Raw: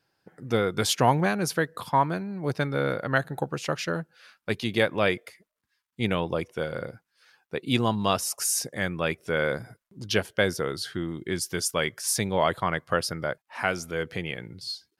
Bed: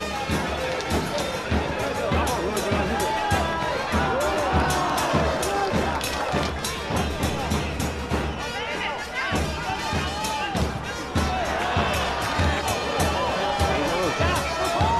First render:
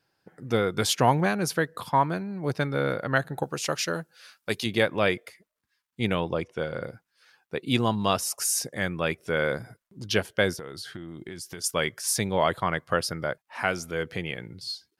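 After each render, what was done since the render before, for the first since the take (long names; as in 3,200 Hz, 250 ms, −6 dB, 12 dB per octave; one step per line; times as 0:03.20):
0:03.43–0:04.66: bass and treble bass −4 dB, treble +9 dB
0:06.29–0:06.82: high-frequency loss of the air 52 metres
0:10.53–0:11.64: downward compressor 10 to 1, threshold −34 dBFS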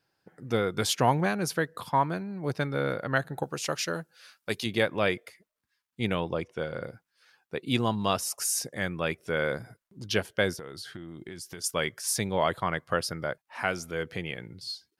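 level −2.5 dB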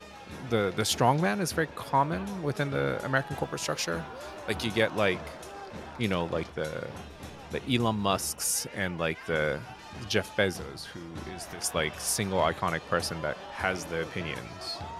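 mix in bed −18.5 dB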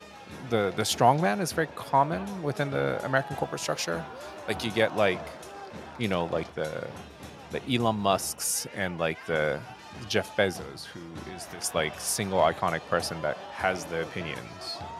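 dynamic equaliser 700 Hz, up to +6 dB, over −43 dBFS, Q 2.6
high-pass filter 82 Hz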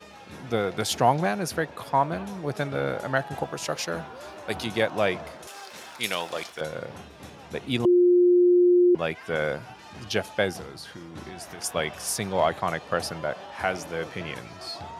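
0:05.47–0:06.61: spectral tilt +4.5 dB per octave
0:07.85–0:08.95: beep over 355 Hz −14.5 dBFS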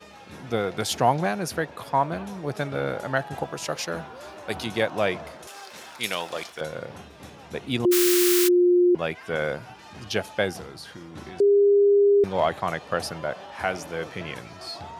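0:07.91–0:08.47: compressing power law on the bin magnitudes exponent 0.27
0:11.40–0:12.24: beep over 404 Hz −14 dBFS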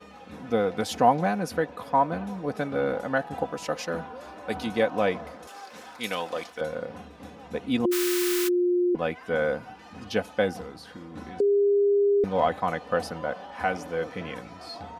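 high-shelf EQ 2,100 Hz −9 dB
comb filter 4 ms, depth 60%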